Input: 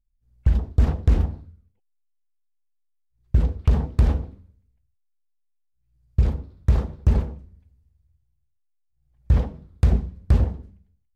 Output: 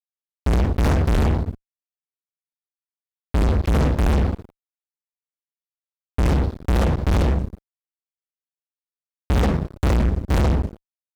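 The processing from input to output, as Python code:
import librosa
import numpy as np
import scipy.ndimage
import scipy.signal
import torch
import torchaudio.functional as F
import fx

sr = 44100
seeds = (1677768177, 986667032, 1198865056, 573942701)

p1 = fx.rider(x, sr, range_db=3, speed_s=0.5)
p2 = x + (p1 * librosa.db_to_amplitude(-1.0))
p3 = fx.fuzz(p2, sr, gain_db=36.0, gate_db=-41.0)
y = p3 * librosa.db_to_amplitude(-2.5)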